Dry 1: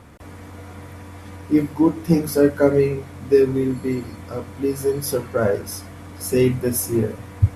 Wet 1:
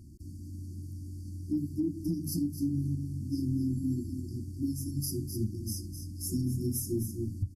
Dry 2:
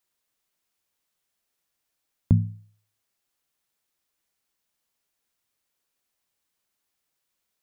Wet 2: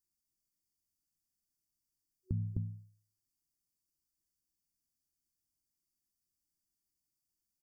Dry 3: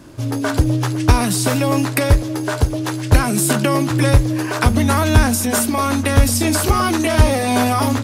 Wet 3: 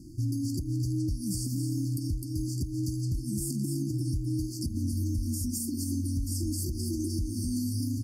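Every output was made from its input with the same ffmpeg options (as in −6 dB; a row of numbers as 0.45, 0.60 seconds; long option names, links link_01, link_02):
-filter_complex "[0:a]lowshelf=frequency=120:gain=7.5,afftfilt=real='re*(1-between(b*sr/4096,370,4400))':imag='im*(1-between(b*sr/4096,370,4400))':win_size=4096:overlap=0.75,acompressor=threshold=-14dB:ratio=5,asplit=2[link_01][link_02];[link_02]aecho=0:1:257:0.376[link_03];[link_01][link_03]amix=inputs=2:normalize=0,alimiter=limit=-15dB:level=0:latency=1:release=201,volume=-7.5dB"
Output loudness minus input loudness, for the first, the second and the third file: −13.5, −14.0, −15.0 LU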